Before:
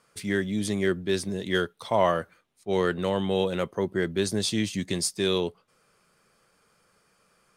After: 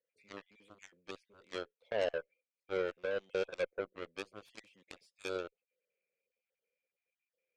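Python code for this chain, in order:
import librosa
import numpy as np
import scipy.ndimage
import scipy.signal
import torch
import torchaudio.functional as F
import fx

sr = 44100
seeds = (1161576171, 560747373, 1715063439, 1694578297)

y = fx.spec_dropout(x, sr, seeds[0], share_pct=24)
y = fx.double_bandpass(y, sr, hz=1100.0, octaves=2.2)
y = fx.cheby_harmonics(y, sr, harmonics=(4, 6, 7), levels_db=(-30, -44, -15), full_scale_db=-21.5)
y = y * librosa.db_to_amplitude(-2.0)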